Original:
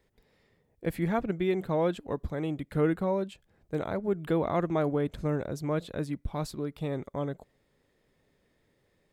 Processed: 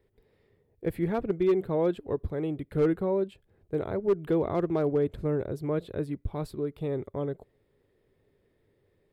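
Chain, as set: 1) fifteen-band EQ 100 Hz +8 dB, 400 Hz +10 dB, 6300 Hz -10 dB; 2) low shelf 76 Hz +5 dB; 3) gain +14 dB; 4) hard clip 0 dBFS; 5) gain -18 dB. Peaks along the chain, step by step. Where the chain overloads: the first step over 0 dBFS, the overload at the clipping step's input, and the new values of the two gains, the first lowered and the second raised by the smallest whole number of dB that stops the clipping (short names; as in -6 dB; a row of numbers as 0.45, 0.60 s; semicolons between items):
-9.0, -8.5, +5.5, 0.0, -18.0 dBFS; step 3, 5.5 dB; step 3 +8 dB, step 5 -12 dB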